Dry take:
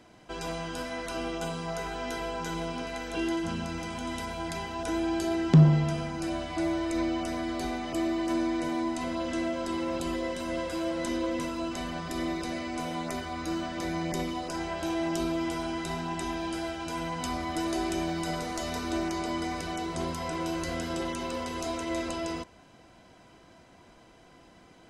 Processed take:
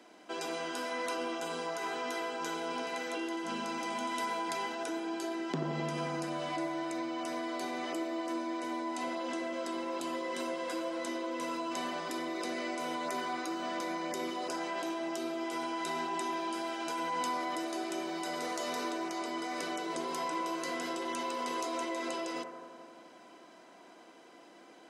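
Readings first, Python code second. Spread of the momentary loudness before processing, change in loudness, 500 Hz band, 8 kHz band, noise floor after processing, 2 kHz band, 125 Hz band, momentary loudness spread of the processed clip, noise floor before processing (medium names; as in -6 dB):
6 LU, -5.0 dB, -3.5 dB, -2.5 dB, -56 dBFS, -1.5 dB, -19.5 dB, 4 LU, -56 dBFS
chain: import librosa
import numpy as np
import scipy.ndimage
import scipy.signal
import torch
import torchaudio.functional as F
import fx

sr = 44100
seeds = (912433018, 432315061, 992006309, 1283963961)

p1 = scipy.signal.sosfilt(scipy.signal.butter(4, 250.0, 'highpass', fs=sr, output='sos'), x)
p2 = fx.over_compress(p1, sr, threshold_db=-36.0, ratio=-1.0)
p3 = p1 + (p2 * 10.0 ** (1.0 / 20.0))
p4 = fx.echo_bbd(p3, sr, ms=86, stages=1024, feedback_pct=80, wet_db=-8)
y = p4 * 10.0 ** (-8.5 / 20.0)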